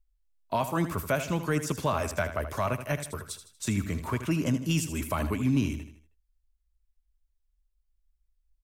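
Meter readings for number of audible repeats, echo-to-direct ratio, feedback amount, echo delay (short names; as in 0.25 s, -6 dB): 4, -10.0 dB, 43%, 79 ms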